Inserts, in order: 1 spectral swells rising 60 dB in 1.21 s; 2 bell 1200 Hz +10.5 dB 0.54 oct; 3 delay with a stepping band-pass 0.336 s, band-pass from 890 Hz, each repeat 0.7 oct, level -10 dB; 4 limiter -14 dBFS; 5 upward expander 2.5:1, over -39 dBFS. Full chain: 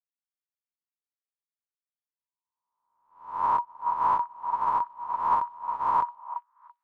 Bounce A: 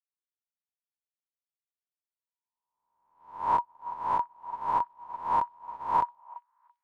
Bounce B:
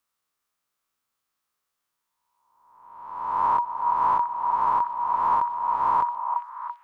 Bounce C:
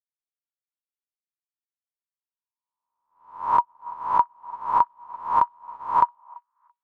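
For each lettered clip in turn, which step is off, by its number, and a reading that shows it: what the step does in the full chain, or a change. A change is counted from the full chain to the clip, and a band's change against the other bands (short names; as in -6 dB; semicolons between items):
2, 1 kHz band -4.0 dB; 5, crest factor change -4.0 dB; 4, crest factor change +6.5 dB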